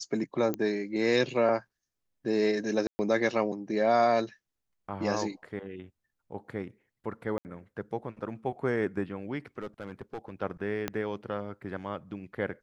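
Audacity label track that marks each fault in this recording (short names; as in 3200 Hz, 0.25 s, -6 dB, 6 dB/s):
0.540000	0.540000	pop -18 dBFS
2.870000	2.990000	gap 0.12 s
7.380000	7.450000	gap 69 ms
9.600000	10.300000	clipped -32.5 dBFS
10.880000	10.880000	pop -15 dBFS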